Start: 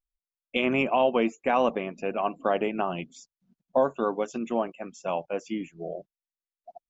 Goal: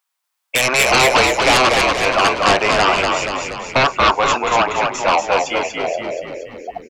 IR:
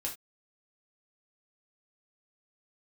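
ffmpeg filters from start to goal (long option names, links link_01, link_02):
-filter_complex "[0:a]highpass=frequency=950:width_type=q:width=1.8,aeval=exprs='0.335*sin(PI/2*5.62*val(0)/0.335)':channel_layout=same,asplit=9[link_01][link_02][link_03][link_04][link_05][link_06][link_07][link_08][link_09];[link_02]adelay=238,afreqshift=-53,volume=-3.5dB[link_10];[link_03]adelay=476,afreqshift=-106,volume=-8.4dB[link_11];[link_04]adelay=714,afreqshift=-159,volume=-13.3dB[link_12];[link_05]adelay=952,afreqshift=-212,volume=-18.1dB[link_13];[link_06]adelay=1190,afreqshift=-265,volume=-23dB[link_14];[link_07]adelay=1428,afreqshift=-318,volume=-27.9dB[link_15];[link_08]adelay=1666,afreqshift=-371,volume=-32.8dB[link_16];[link_09]adelay=1904,afreqshift=-424,volume=-37.7dB[link_17];[link_01][link_10][link_11][link_12][link_13][link_14][link_15][link_16][link_17]amix=inputs=9:normalize=0"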